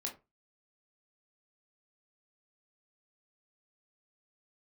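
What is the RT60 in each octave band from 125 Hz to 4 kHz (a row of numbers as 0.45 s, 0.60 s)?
0.30 s, 0.25 s, 0.25 s, 0.25 s, 0.20 s, 0.15 s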